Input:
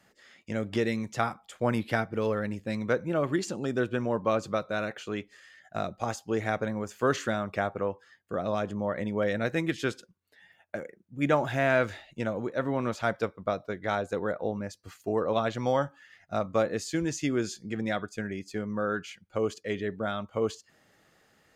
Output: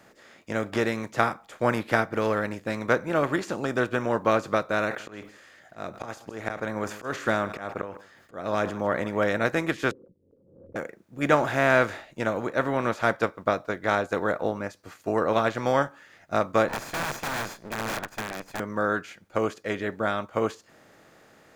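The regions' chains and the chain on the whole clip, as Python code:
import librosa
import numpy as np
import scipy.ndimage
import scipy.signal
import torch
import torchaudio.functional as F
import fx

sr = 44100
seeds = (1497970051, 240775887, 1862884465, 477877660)

y = fx.chain(x, sr, fx.auto_swell(attack_ms=278.0),
    fx.echo_single(ms=155, db=-23.5),
    fx.sustainer(db_per_s=110.0), at=(4.84, 9.32))
y = fx.chain(y, sr, fx.cheby1_lowpass(hz=550.0, order=10),
    fx.pre_swell(db_per_s=92.0), at=(9.91, 10.76))
y = fx.chain(y, sr, fx.lower_of_two(delay_ms=1.2),
    fx.overflow_wrap(gain_db=29.0), at=(16.68, 18.6))
y = fx.bin_compress(y, sr, power=0.6)
y = fx.dynamic_eq(y, sr, hz=1400.0, q=0.89, threshold_db=-39.0, ratio=4.0, max_db=4)
y = fx.upward_expand(y, sr, threshold_db=-40.0, expansion=1.5)
y = F.gain(torch.from_numpy(y), 1.0).numpy()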